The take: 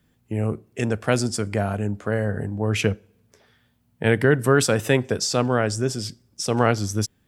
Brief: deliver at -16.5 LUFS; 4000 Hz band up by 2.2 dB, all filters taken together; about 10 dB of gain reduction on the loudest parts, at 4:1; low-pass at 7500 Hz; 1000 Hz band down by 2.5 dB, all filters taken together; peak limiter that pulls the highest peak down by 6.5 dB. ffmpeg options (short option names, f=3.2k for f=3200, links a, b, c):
-af "lowpass=7.5k,equalizer=f=1k:t=o:g=-4,equalizer=f=4k:t=o:g=4,acompressor=threshold=-25dB:ratio=4,volume=14.5dB,alimiter=limit=-4dB:level=0:latency=1"